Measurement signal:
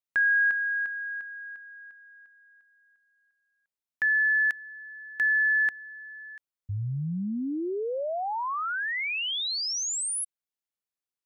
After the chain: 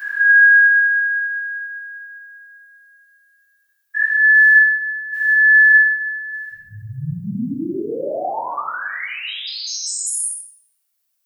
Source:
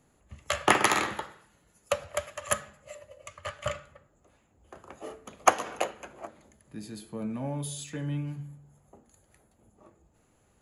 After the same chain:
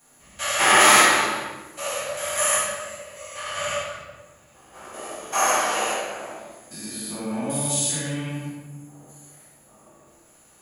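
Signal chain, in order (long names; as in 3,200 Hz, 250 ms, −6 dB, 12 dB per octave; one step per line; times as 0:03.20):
spectrum averaged block by block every 200 ms
RIAA equalisation recording
rectangular room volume 730 cubic metres, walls mixed, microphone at 8.1 metres
level −2.5 dB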